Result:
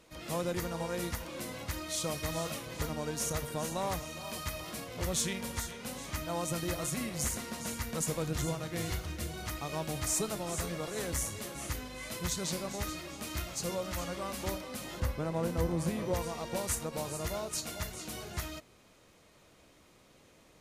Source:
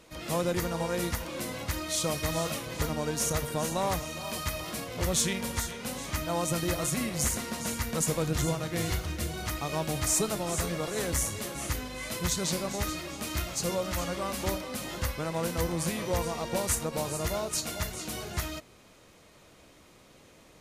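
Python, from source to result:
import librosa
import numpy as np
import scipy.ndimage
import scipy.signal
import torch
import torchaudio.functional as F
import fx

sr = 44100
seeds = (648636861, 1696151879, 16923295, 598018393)

y = fx.tilt_shelf(x, sr, db=5.0, hz=1200.0, at=(15.0, 16.14))
y = y * 10.0 ** (-5.0 / 20.0)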